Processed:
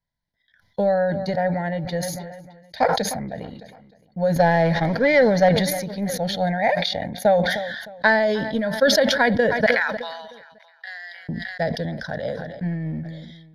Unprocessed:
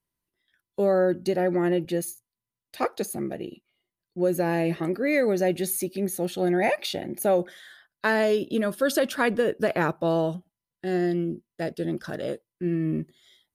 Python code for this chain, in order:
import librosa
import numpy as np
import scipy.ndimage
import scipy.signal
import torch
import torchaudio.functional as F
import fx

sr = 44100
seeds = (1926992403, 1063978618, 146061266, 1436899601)

y = fx.highpass(x, sr, hz=1200.0, slope=24, at=(9.66, 11.29))
y = fx.transient(y, sr, attack_db=7, sustain_db=-4)
y = fx.leveller(y, sr, passes=2, at=(4.36, 5.49))
y = fx.air_absorb(y, sr, metres=79.0)
y = fx.fixed_phaser(y, sr, hz=1800.0, stages=8)
y = fx.echo_feedback(y, sr, ms=307, feedback_pct=54, wet_db=-24)
y = fx.sustainer(y, sr, db_per_s=40.0)
y = F.gain(torch.from_numpy(y), 4.0).numpy()